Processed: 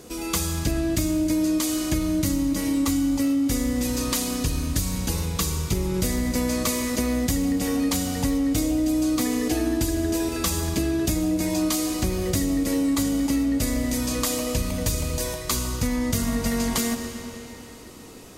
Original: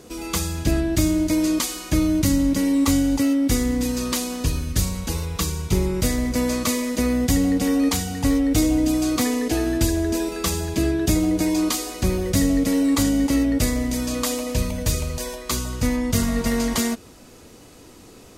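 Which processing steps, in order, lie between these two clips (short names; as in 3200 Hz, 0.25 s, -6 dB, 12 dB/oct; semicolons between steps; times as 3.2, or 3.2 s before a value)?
high shelf 7800 Hz +5 dB; reverb RT60 3.8 s, pre-delay 25 ms, DRR 8.5 dB; compressor, threshold -20 dBFS, peak gain reduction 7.5 dB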